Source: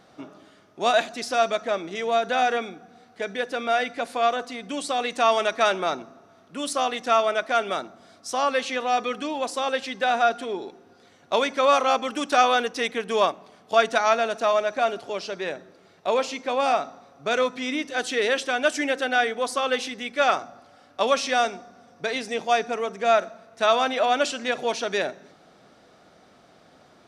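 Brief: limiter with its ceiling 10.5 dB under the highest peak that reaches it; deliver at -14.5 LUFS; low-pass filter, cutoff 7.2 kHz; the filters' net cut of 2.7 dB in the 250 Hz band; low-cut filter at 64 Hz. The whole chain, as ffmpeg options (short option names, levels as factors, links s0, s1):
-af "highpass=64,lowpass=7200,equalizer=f=250:t=o:g=-3,volume=4.22,alimiter=limit=0.75:level=0:latency=1"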